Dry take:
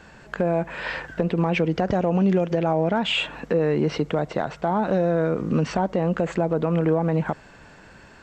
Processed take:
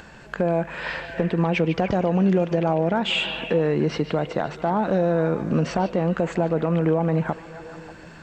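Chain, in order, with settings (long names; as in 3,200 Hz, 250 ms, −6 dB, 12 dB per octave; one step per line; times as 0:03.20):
upward compression, threshold −40 dBFS
echo through a band-pass that steps 147 ms, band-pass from 3,400 Hz, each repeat −0.7 octaves, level −7 dB
on a send at −20.5 dB: convolution reverb RT60 2.0 s, pre-delay 6 ms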